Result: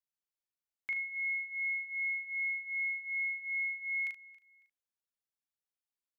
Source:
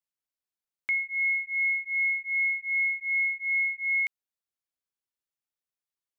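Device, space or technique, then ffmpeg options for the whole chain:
slapback doubling: -filter_complex "[0:a]aecho=1:1:276|552:0.0891|0.0267,asplit=3[a][b][c];[b]adelay=39,volume=-3.5dB[d];[c]adelay=75,volume=-11.5dB[e];[a][d][e]amix=inputs=3:normalize=0,volume=-8dB"

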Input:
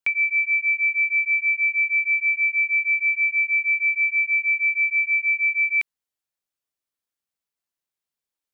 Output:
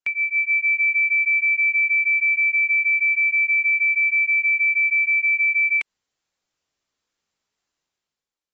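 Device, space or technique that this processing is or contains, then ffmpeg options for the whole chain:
low-bitrate web radio: -af "dynaudnorm=f=150:g=9:m=12dB,alimiter=limit=-13dB:level=0:latency=1:release=105,volume=-2dB" -ar 24000 -c:a aac -b:a 24k

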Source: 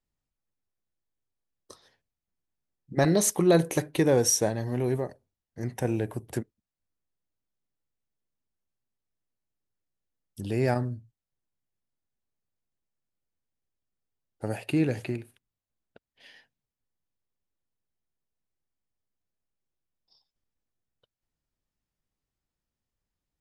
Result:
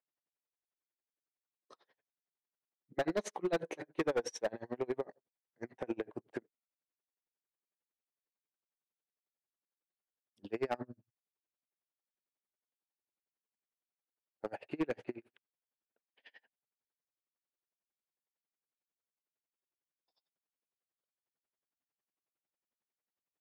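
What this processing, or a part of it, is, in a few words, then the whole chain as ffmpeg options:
helicopter radio: -af "highpass=340,lowpass=2.6k,aeval=exprs='val(0)*pow(10,-33*(0.5-0.5*cos(2*PI*11*n/s))/20)':c=same,asoftclip=type=hard:threshold=-28dB,volume=1dB"

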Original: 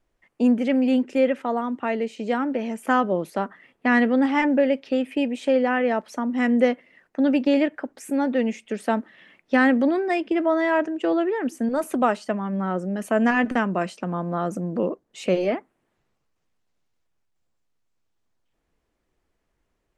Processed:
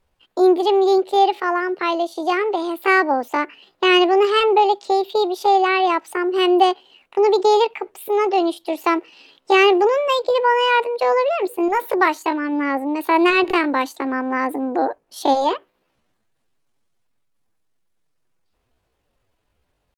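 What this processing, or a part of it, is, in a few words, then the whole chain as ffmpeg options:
chipmunk voice: -af "asetrate=66075,aresample=44100,atempo=0.66742,volume=4.5dB"

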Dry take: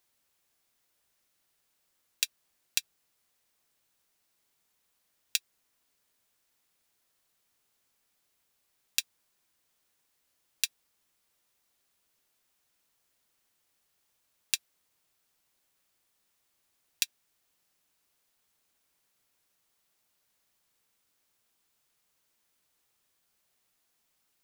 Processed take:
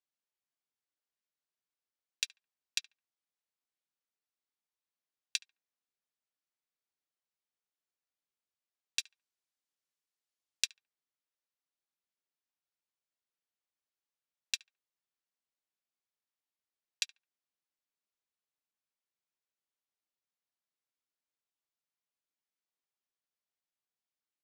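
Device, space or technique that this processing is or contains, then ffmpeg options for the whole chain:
over-cleaned archive recording: -filter_complex "[0:a]highpass=150,lowpass=6.8k,afwtdn=0.00126,asettb=1/sr,asplit=3[a][b][c];[a]atrim=end=8.994[d];[b]atrim=start=8.99:end=10.64,asetpts=PTS-STARTPTS,afade=t=in:d=0.004:c=qsin,afade=t=out:st=1.646:d=0.004:c=qsin,highshelf=f=4.3k:g=8[e];[c]atrim=start=10.636[f];[d][e]acrossfade=d=0.004:c1=hsin:c2=qsin[g];[g][f]acrossfade=d=0.004:c1=qsin:c2=hsin,asplit=2[h][i];[i]adelay=71,lowpass=f=1k:p=1,volume=-15dB,asplit=2[j][k];[k]adelay=71,lowpass=f=1k:p=1,volume=0.36,asplit=2[l][m];[m]adelay=71,lowpass=f=1k:p=1,volume=0.36[n];[h][j][l][n]amix=inputs=4:normalize=0,volume=-3dB"

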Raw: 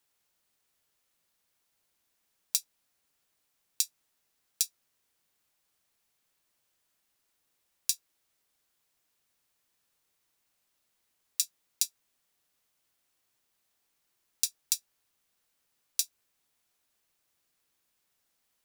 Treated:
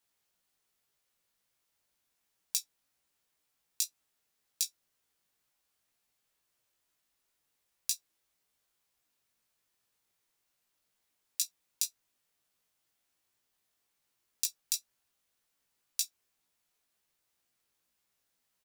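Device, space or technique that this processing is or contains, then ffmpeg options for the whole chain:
double-tracked vocal: -filter_complex "[0:a]asplit=2[a][b];[b]adelay=17,volume=-12.5dB[c];[a][c]amix=inputs=2:normalize=0,flanger=delay=15.5:depth=3.8:speed=2"

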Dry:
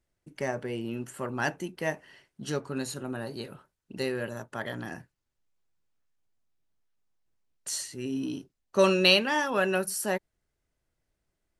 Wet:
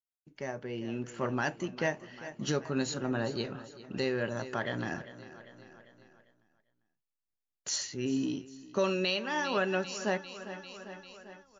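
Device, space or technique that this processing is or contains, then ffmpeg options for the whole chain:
low-bitrate web radio: -af "aecho=1:1:397|794|1191|1588|1985:0.141|0.0805|0.0459|0.0262|0.0149,agate=range=-33dB:threshold=-59dB:ratio=3:detection=peak,dynaudnorm=f=290:g=7:m=12dB,alimiter=limit=-11dB:level=0:latency=1:release=449,volume=-7.5dB" -ar 16000 -c:a libmp3lame -b:a 48k

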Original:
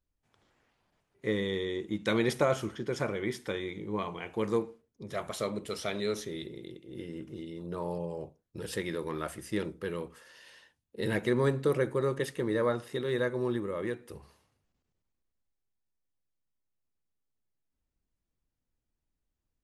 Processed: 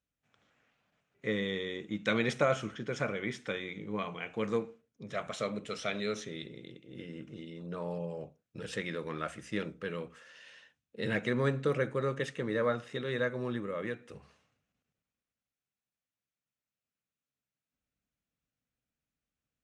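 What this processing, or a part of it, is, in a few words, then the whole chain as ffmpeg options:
car door speaker: -af "highpass=83,equalizer=f=87:t=q:w=4:g=-9,equalizer=f=360:t=q:w=4:g=-9,equalizer=f=930:t=q:w=4:g=-7,equalizer=f=1.4k:t=q:w=4:g=3,equalizer=f=2.5k:t=q:w=4:g=4,equalizer=f=4.7k:t=q:w=4:g=-6,lowpass=f=7.3k:w=0.5412,lowpass=f=7.3k:w=1.3066"

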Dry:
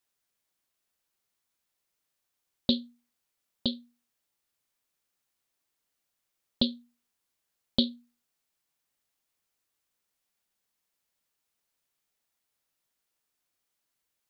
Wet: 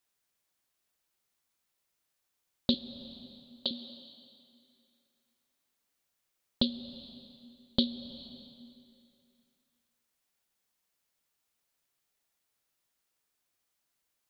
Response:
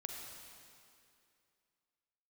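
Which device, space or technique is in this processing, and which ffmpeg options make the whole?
compressed reverb return: -filter_complex "[0:a]asettb=1/sr,asplit=3[a][b][c];[a]atrim=end=2.744[d];[b]atrim=start=2.74:end=3.71,asetpts=PTS-STARTPTS,afade=t=in:d=0.004:c=qsin,afade=t=out:st=0.966:d=0.004:c=qsin,highpass=480[e];[c]atrim=start=3.706[f];[d][e]acrossfade=d=0.004:c1=hsin:c2=qsin[g];[g][f]acrossfade=d=0.004:c1=qsin:c2=hsin,asplit=2[h][i];[1:a]atrim=start_sample=2205[j];[i][j]afir=irnorm=-1:irlink=0,acompressor=threshold=-36dB:ratio=6,volume=-0.5dB[k];[h][k]amix=inputs=2:normalize=0,volume=-3.5dB"

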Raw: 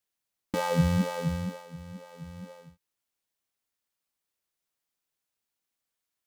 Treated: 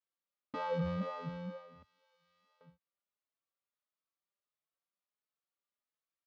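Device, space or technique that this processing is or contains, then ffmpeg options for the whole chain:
barber-pole flanger into a guitar amplifier: -filter_complex "[0:a]asettb=1/sr,asplit=3[a][b][c];[a]atrim=end=1.824[d];[b]atrim=start=1.82:end=2.61,asetpts=PTS-STARTPTS,afade=t=in:d=0.004:c=qsin,afade=t=out:st=0.786:d=0.004:c=qsin,aderivative[e];[c]atrim=start=2.606[f];[d][e]acrossfade=d=0.004:c1=hsin:c2=qsin[g];[g][f]acrossfade=d=0.004:c1=qsin:c2=hsin,asplit=2[h][i];[i]adelay=4.1,afreqshift=1.5[j];[h][j]amix=inputs=2:normalize=1,asoftclip=type=tanh:threshold=-19.5dB,highpass=76,equalizer=f=100:t=q:w=4:g=-10,equalizer=f=570:t=q:w=4:g=7,equalizer=f=1.2k:t=q:w=4:g=9,lowpass=f=4.3k:w=0.5412,lowpass=f=4.3k:w=1.3066,volume=-8dB"

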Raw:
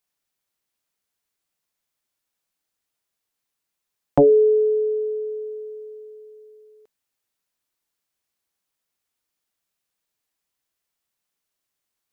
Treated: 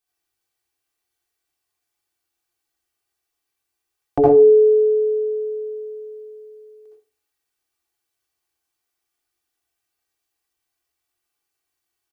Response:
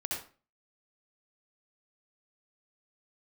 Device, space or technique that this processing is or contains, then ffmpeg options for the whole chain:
microphone above a desk: -filter_complex "[0:a]aecho=1:1:2.6:0.71[a];[1:a]atrim=start_sample=2205[b];[a][b]afir=irnorm=-1:irlink=0,volume=-2.5dB"

